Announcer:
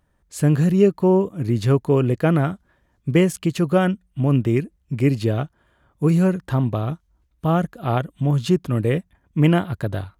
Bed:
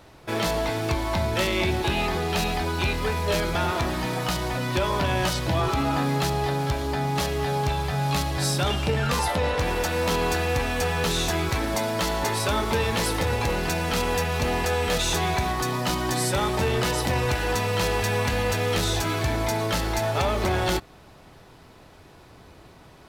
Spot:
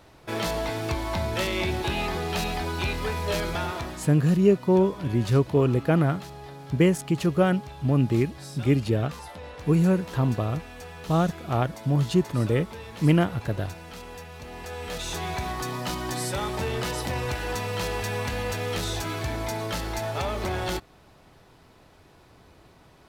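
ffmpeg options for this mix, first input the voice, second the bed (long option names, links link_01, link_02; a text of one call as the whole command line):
ffmpeg -i stem1.wav -i stem2.wav -filter_complex "[0:a]adelay=3650,volume=-3.5dB[link_01];[1:a]volume=8.5dB,afade=type=out:start_time=3.49:duration=0.65:silence=0.211349,afade=type=in:start_time=14.48:duration=1.03:silence=0.266073[link_02];[link_01][link_02]amix=inputs=2:normalize=0" out.wav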